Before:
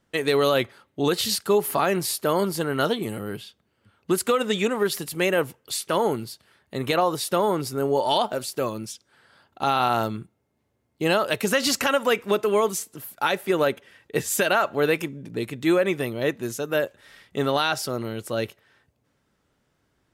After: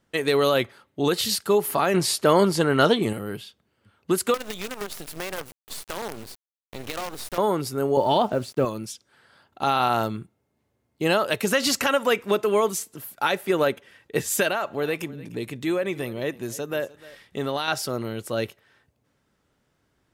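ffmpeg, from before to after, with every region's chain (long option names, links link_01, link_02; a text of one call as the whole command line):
ffmpeg -i in.wav -filter_complex "[0:a]asettb=1/sr,asplit=3[link_01][link_02][link_03];[link_01]atrim=end=1.944[link_04];[link_02]atrim=start=1.94:end=3.13,asetpts=PTS-STARTPTS,afade=type=in:duration=0.004:curve=qsin,afade=type=out:start_time=1.186:duration=0.004:curve=qsin,lowpass=8700,acontrast=28[link_05];[link_03]atrim=start=3.126[link_06];[link_04][link_05]acrossfade=duration=0.004:curve1=hsin:curve2=qsin[link_07];[link_07][link_06]acrossfade=duration=0.004:curve1=qsin:curve2=hsin,asettb=1/sr,asplit=3[link_08][link_09][link_10];[link_08]atrim=end=4.344[link_11];[link_09]atrim=start=4.34:end=7.38,asetpts=PTS-STARTPTS,afade=type=in:duration=0.004:curve=qsin,afade=type=out:start_time=3.036:duration=0.004:curve=qsin,lowshelf=frequency=100:width_type=q:width=3:gain=6,acrusher=bits=4:dc=4:mix=0:aa=0.000001,acompressor=threshold=-30dB:ratio=3:attack=3.2:release=140:knee=1:detection=peak[link_12];[link_10]atrim=start=7.376[link_13];[link_11][link_12]acrossfade=duration=0.004:curve1=hsin:curve2=qsin[link_14];[link_14][link_13]acrossfade=duration=0.004:curve1=qsin:curve2=hsin,asettb=1/sr,asplit=3[link_15][link_16][link_17];[link_15]atrim=end=7.974[link_18];[link_16]atrim=start=7.97:end=8.65,asetpts=PTS-STARTPTS,afade=type=in:duration=0.004:curve=qsin,afade=type=out:start_time=0.676:duration=0.004:curve=qsin,lowpass=frequency=2400:poles=1,lowshelf=frequency=350:gain=10.5,acrusher=bits=7:mix=0:aa=0.5[link_19];[link_17]atrim=start=8.646[link_20];[link_18][link_19]acrossfade=duration=0.004:curve1=hsin:curve2=qsin[link_21];[link_21][link_20]acrossfade=duration=0.004:curve1=qsin:curve2=hsin,asettb=1/sr,asplit=3[link_22][link_23][link_24];[link_22]atrim=end=14.484[link_25];[link_23]atrim=start=14.48:end=17.68,asetpts=PTS-STARTPTS,afade=type=in:duration=0.004:curve=qsin,afade=type=out:start_time=3.196:duration=0.004:curve=qsin,acompressor=threshold=-29dB:ratio=1.5:attack=3.2:release=140:knee=1:detection=peak,equalizer=frequency=1400:width_type=o:width=0.26:gain=-3,aecho=1:1:300:0.1,atrim=end_sample=141120[link_26];[link_24]atrim=start=17.676[link_27];[link_25][link_26]acrossfade=duration=0.004:curve1=hsin:curve2=qsin[link_28];[link_28][link_27]acrossfade=duration=0.004:curve1=qsin:curve2=hsin" out.wav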